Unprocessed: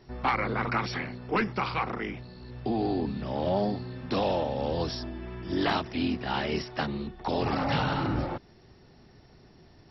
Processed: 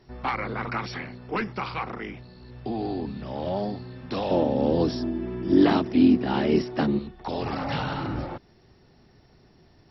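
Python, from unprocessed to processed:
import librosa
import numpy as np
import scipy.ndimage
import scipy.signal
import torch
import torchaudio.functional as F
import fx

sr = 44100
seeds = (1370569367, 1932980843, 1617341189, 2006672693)

y = fx.peak_eq(x, sr, hz=280.0, db=14.0, octaves=1.9, at=(4.31, 6.99))
y = y * 10.0 ** (-1.5 / 20.0)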